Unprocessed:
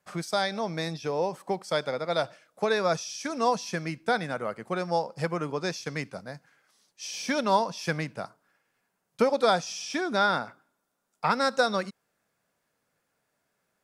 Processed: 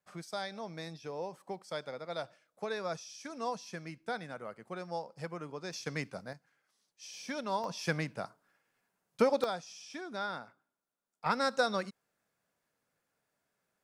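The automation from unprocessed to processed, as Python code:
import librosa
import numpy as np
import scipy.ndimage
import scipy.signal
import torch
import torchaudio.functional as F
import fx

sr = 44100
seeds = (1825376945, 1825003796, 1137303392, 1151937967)

y = fx.gain(x, sr, db=fx.steps((0.0, -11.5), (5.73, -4.0), (6.33, -11.0), (7.64, -3.5), (9.44, -13.5), (11.26, -5.5)))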